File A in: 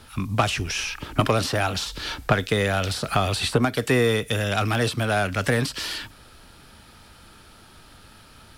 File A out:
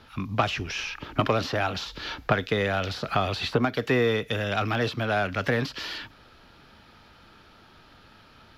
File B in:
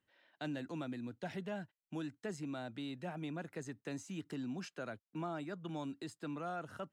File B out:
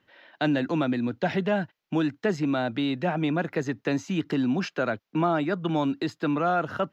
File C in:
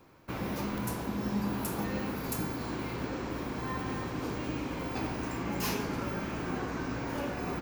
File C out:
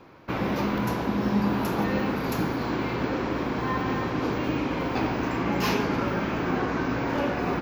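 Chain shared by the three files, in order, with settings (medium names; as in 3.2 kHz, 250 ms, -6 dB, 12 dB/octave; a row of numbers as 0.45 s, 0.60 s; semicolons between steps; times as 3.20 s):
boxcar filter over 5 samples; bass shelf 110 Hz -7 dB; normalise loudness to -27 LUFS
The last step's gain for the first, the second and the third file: -2.0 dB, +17.5 dB, +9.5 dB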